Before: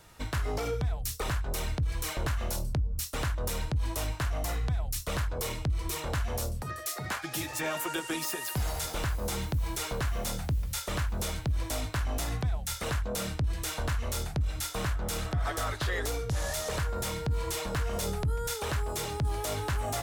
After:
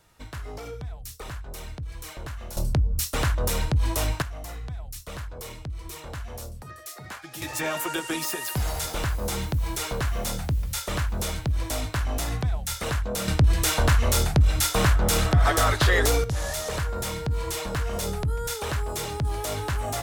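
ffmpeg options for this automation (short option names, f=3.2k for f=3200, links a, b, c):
-af "asetnsamples=n=441:p=0,asendcmd='2.57 volume volume 7dB;4.22 volume volume -5dB;7.42 volume volume 4dB;13.28 volume volume 11dB;16.24 volume volume 3dB',volume=-5.5dB"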